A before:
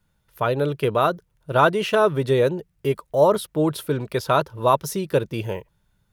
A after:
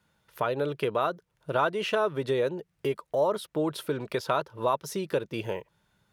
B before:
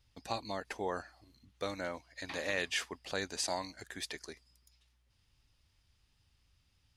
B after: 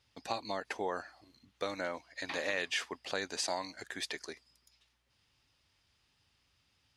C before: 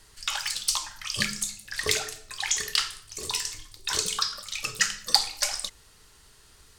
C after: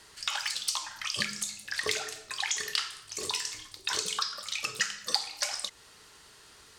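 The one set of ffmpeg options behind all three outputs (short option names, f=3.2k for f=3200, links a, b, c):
-af "highpass=f=280:p=1,highshelf=f=9.1k:g=-10,acompressor=threshold=-37dB:ratio=2,volume=4.5dB"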